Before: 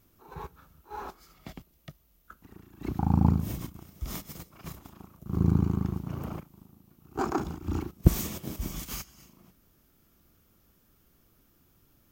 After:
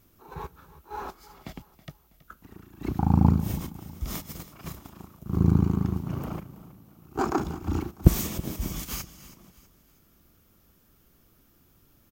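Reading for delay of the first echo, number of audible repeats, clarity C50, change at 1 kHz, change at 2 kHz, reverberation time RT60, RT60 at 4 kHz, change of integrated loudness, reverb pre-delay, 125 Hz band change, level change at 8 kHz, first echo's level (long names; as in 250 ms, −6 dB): 324 ms, 3, no reverb audible, +3.0 dB, +3.0 dB, no reverb audible, no reverb audible, +3.0 dB, no reverb audible, +3.0 dB, +3.0 dB, −17.5 dB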